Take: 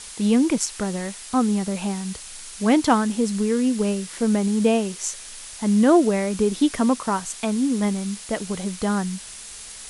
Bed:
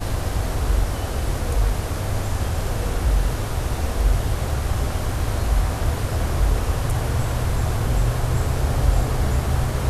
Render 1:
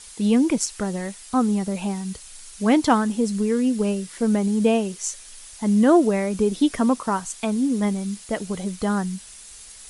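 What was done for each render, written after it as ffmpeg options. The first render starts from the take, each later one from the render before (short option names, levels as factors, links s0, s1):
-af "afftdn=nr=7:nf=-39"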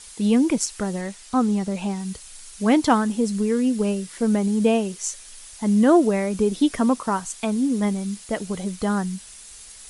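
-filter_complex "[0:a]asettb=1/sr,asplit=3[s0][s1][s2];[s0]atrim=end=1.014[s3];[s1]atrim=start=1.01:end=2,asetpts=PTS-STARTPTS,afade=t=in:d=0.004:c=qsin,afade=t=out:st=0.986:d=0.004:c=qsin,lowpass=8700[s4];[s2]atrim=start=1.996[s5];[s3][s4]acrossfade=d=0.004:c1=hsin:c2=qsin[s6];[s6][s5]acrossfade=d=0.004:c1=qsin:c2=hsin"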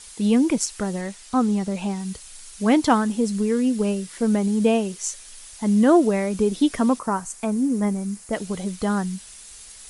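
-filter_complex "[0:a]asettb=1/sr,asplit=3[s0][s1][s2];[s0]atrim=end=6.994[s3];[s1]atrim=start=6.99:end=8.33,asetpts=PTS-STARTPTS,afade=t=in:d=0.004:c=qsin,afade=t=out:st=1.336:d=0.004:c=qsin,equalizer=f=3500:t=o:w=1:g=-11[s4];[s2]atrim=start=8.326[s5];[s3][s4]acrossfade=d=0.004:c1=hsin:c2=qsin[s6];[s6][s5]acrossfade=d=0.004:c1=qsin:c2=hsin"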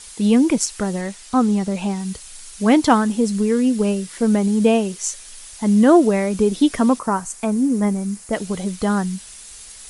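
-af "volume=1.5"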